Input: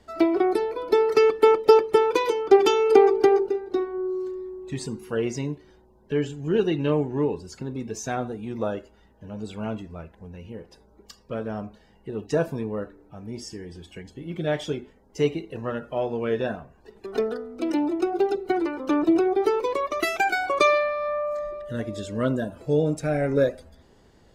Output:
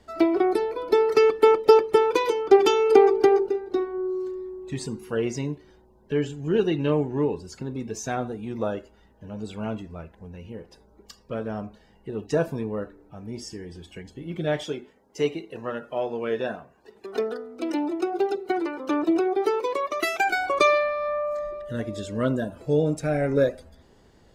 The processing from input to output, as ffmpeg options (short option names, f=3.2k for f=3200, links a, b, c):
-filter_complex "[0:a]asettb=1/sr,asplit=3[a][b][c];[a]atrim=end=14.634[d];[b]atrim=start=14.63:end=20.28,asetpts=PTS-STARTPTS,afade=t=in:d=0.004:c=qsin,afade=t=out:st=5.646:d=0.004:c=qsin,highpass=f=280:p=1[e];[c]atrim=start=20.276[f];[d][e]acrossfade=d=0.004:c1=hsin:c2=qsin[g];[g][f]acrossfade=d=0.004:c1=qsin:c2=hsin"